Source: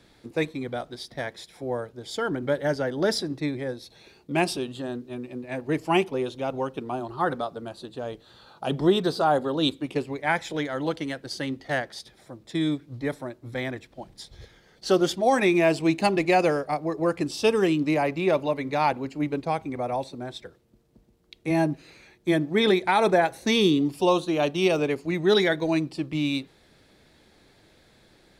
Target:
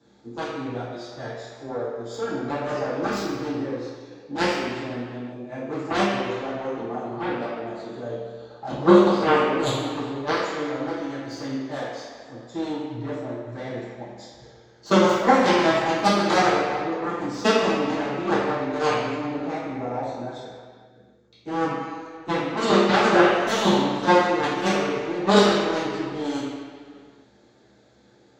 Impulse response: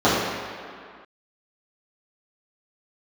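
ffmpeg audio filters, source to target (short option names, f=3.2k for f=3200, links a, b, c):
-filter_complex "[0:a]lowpass=f=6.8k:t=q:w=3.9,aeval=exprs='0.398*(cos(1*acos(clip(val(0)/0.398,-1,1)))-cos(1*PI/2))+0.158*(cos(3*acos(clip(val(0)/0.398,-1,1)))-cos(3*PI/2))+0.00562*(cos(6*acos(clip(val(0)/0.398,-1,1)))-cos(6*PI/2))':c=same[a];[1:a]atrim=start_sample=2205,asetrate=48510,aresample=44100[b];[a][b]afir=irnorm=-1:irlink=0,volume=-10dB"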